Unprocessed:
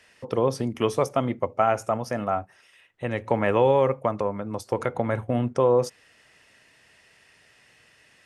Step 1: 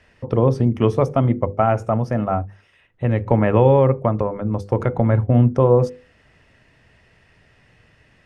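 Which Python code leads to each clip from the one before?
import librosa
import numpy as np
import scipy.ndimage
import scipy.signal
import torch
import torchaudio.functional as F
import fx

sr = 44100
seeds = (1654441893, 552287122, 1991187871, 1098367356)

y = fx.riaa(x, sr, side='playback')
y = fx.hum_notches(y, sr, base_hz=50, count=10)
y = y * librosa.db_to_amplitude(2.5)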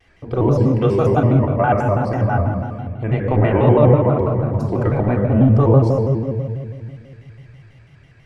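y = fx.room_shoebox(x, sr, seeds[0], volume_m3=3500.0, walls='mixed', distance_m=3.3)
y = fx.vibrato_shape(y, sr, shape='square', rate_hz=6.1, depth_cents=160.0)
y = y * librosa.db_to_amplitude(-3.5)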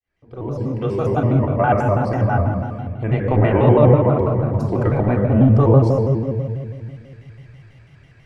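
y = fx.fade_in_head(x, sr, length_s=1.72)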